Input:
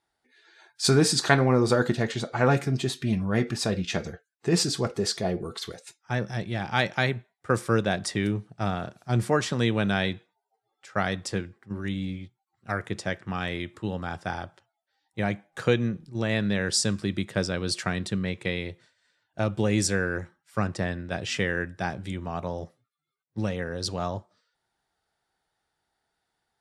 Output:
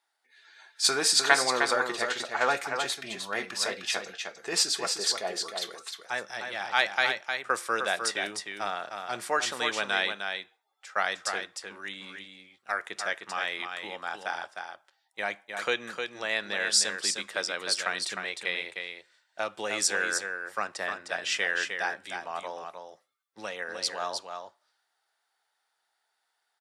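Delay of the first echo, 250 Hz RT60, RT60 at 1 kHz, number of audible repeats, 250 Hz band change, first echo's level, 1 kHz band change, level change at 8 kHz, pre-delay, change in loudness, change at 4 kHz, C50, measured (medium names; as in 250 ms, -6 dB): 307 ms, no reverb, no reverb, 1, -16.5 dB, -6.0 dB, +1.0 dB, +3.0 dB, no reverb, -1.5 dB, +3.0 dB, no reverb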